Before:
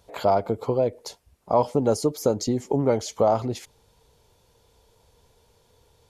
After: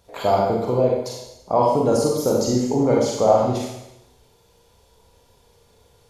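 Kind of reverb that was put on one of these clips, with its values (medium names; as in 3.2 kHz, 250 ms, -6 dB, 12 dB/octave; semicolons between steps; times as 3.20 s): Schroeder reverb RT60 0.89 s, combs from 32 ms, DRR -2.5 dB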